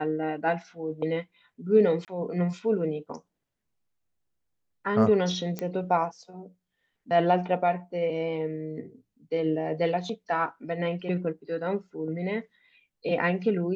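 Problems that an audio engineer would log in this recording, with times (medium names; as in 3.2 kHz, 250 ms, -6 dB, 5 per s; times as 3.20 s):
2.05–2.08 s: dropout 28 ms
5.59 s: pop -17 dBFS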